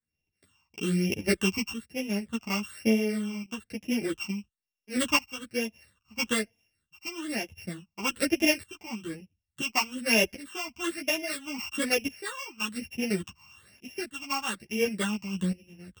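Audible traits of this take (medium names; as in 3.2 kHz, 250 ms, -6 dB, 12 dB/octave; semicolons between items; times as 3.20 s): a buzz of ramps at a fixed pitch in blocks of 16 samples; phasing stages 8, 1.1 Hz, lowest notch 490–1300 Hz; tremolo saw up 0.58 Hz, depth 85%; a shimmering, thickened sound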